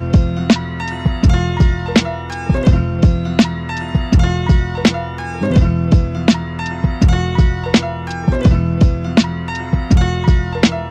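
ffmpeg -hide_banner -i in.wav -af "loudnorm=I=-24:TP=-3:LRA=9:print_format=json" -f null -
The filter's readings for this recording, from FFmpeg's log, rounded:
"input_i" : "-15.7",
"input_tp" : "-2.6",
"input_lra" : "0.5",
"input_thresh" : "-25.7",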